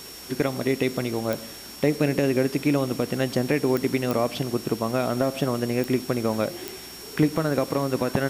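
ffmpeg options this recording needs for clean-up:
ffmpeg -i in.wav -af "adeclick=threshold=4,bandreject=frequency=61.7:width_type=h:width=4,bandreject=frequency=123.4:width_type=h:width=4,bandreject=frequency=185.1:width_type=h:width=4,bandreject=frequency=246.8:width_type=h:width=4,bandreject=frequency=5500:width=30,afftdn=noise_reduction=30:noise_floor=-40" out.wav

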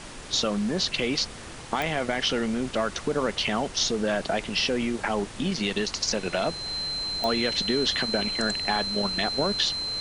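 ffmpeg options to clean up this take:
ffmpeg -i in.wav -af "adeclick=threshold=4,bandreject=frequency=4100:width=30,afftdn=noise_reduction=30:noise_floor=-40" out.wav

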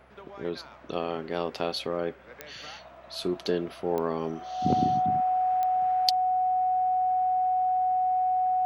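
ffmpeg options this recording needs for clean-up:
ffmpeg -i in.wav -af "adeclick=threshold=4,bandreject=frequency=63.7:width_type=h:width=4,bandreject=frequency=127.4:width_type=h:width=4,bandreject=frequency=191.1:width_type=h:width=4,bandreject=frequency=254.8:width_type=h:width=4,bandreject=frequency=740:width=30" out.wav

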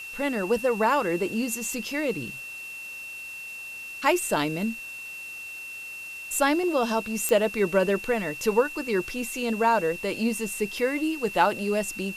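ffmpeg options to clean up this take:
ffmpeg -i in.wav -af "adeclick=threshold=4,bandreject=frequency=2700:width=30,afwtdn=0.004" out.wav

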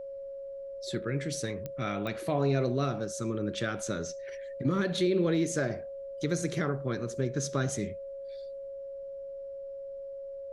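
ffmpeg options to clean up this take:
ffmpeg -i in.wav -af "adeclick=threshold=4,bandreject=frequency=550:width=30,agate=range=-21dB:threshold=-33dB" out.wav

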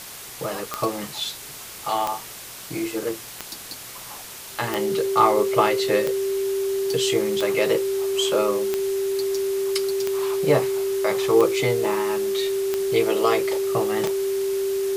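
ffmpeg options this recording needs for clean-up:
ffmpeg -i in.wav -af "adeclick=threshold=4,bandreject=frequency=390:width=30,afwtdn=0.014" out.wav

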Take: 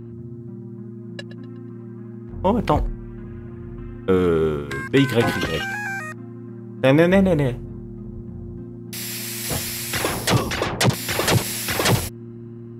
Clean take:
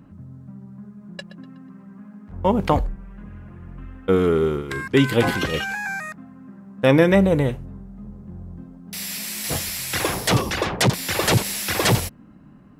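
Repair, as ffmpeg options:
ffmpeg -i in.wav -filter_complex "[0:a]bandreject=frequency=116.6:width_type=h:width=4,bandreject=frequency=233.2:width_type=h:width=4,bandreject=frequency=349.8:width_type=h:width=4,asplit=3[link_01][link_02][link_03];[link_01]afade=type=out:start_time=8.14:duration=0.02[link_04];[link_02]highpass=frequency=140:width=0.5412,highpass=frequency=140:width=1.3066,afade=type=in:start_time=8.14:duration=0.02,afade=type=out:start_time=8.26:duration=0.02[link_05];[link_03]afade=type=in:start_time=8.26:duration=0.02[link_06];[link_04][link_05][link_06]amix=inputs=3:normalize=0" out.wav

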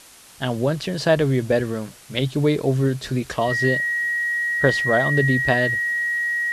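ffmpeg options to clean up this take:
ffmpeg -i in.wav -af "bandreject=frequency=1900:width=30,afwtdn=0.0056" out.wav

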